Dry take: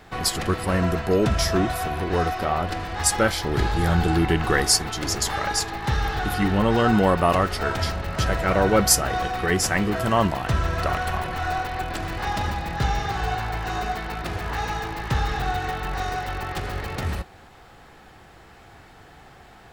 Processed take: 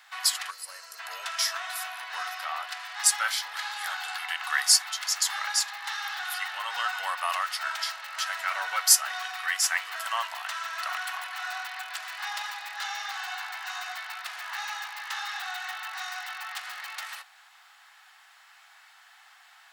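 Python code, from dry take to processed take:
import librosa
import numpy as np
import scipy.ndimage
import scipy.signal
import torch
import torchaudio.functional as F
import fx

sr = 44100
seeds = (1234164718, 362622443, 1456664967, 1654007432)

y = fx.spec_box(x, sr, start_s=0.5, length_s=0.49, low_hz=620.0, high_hz=4000.0, gain_db=-14)
y = scipy.signal.sosfilt(scipy.signal.bessel(8, 1500.0, 'highpass', norm='mag', fs=sr, output='sos'), y)
y = fx.notch(y, sr, hz=2400.0, q=28.0)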